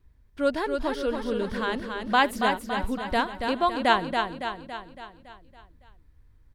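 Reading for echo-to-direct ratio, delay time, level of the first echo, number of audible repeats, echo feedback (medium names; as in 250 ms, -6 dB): -4.0 dB, 280 ms, -5.5 dB, 6, 54%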